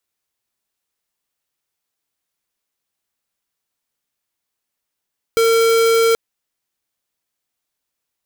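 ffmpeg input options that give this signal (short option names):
-f lavfi -i "aevalsrc='0.211*(2*lt(mod(456*t,1),0.5)-1)':d=0.78:s=44100"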